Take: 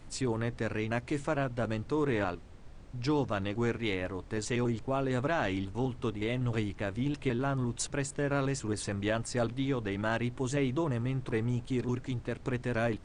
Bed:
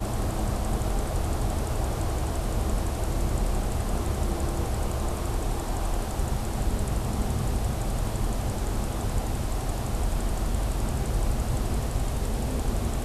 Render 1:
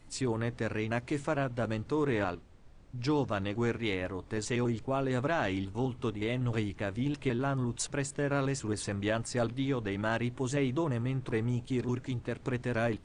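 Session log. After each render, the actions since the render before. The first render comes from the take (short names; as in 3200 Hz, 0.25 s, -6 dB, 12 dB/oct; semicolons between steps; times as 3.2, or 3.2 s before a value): noise print and reduce 6 dB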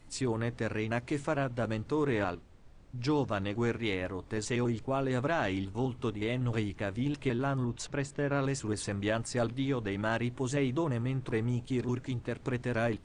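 7.65–8.44 air absorption 81 m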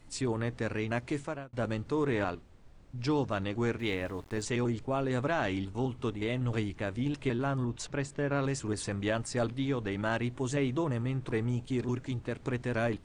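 1.11–1.53 fade out; 3.79–4.42 sample gate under -50.5 dBFS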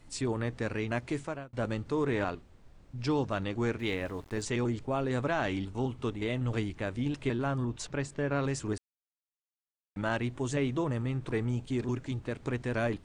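8.78–9.96 mute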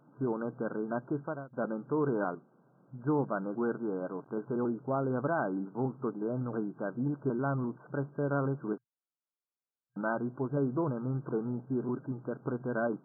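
FFT band-pass 120–1600 Hz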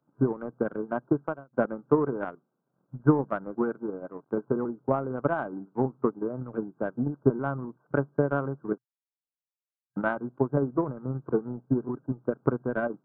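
transient shaper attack +11 dB, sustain -9 dB; three-band expander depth 40%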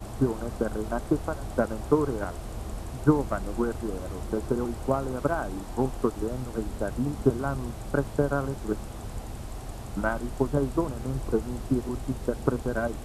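add bed -9 dB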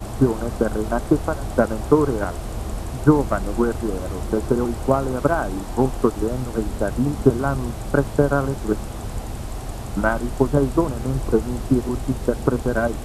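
gain +7.5 dB; limiter -2 dBFS, peak gain reduction 3 dB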